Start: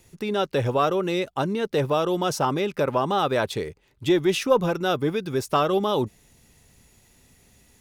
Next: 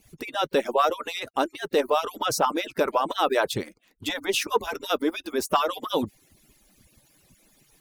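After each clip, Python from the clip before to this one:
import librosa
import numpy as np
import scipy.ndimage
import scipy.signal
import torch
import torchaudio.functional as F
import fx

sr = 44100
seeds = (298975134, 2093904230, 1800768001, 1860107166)

y = fx.hpss_only(x, sr, part='percussive')
y = fx.high_shelf(y, sr, hz=12000.0, db=7.0)
y = y * 10.0 ** (2.0 / 20.0)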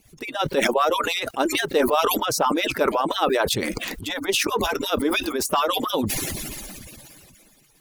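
y = x * (1.0 - 0.51 / 2.0 + 0.51 / 2.0 * np.cos(2.0 * np.pi * 17.0 * (np.arange(len(x)) / sr)))
y = fx.sustainer(y, sr, db_per_s=22.0)
y = y * 10.0 ** (2.5 / 20.0)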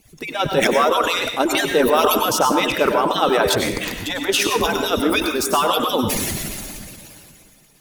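y = fx.rev_plate(x, sr, seeds[0], rt60_s=0.57, hf_ratio=0.8, predelay_ms=85, drr_db=4.5)
y = y * 10.0 ** (3.0 / 20.0)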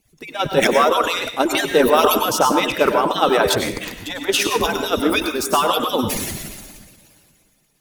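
y = fx.upward_expand(x, sr, threshold_db=-38.0, expansion=1.5)
y = y * 10.0 ** (2.5 / 20.0)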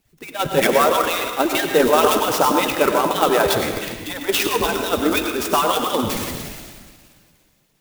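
y = fx.rev_gated(x, sr, seeds[1], gate_ms=440, shape='flat', drr_db=9.0)
y = fx.clock_jitter(y, sr, seeds[2], jitter_ms=0.031)
y = y * 10.0 ** (-1.0 / 20.0)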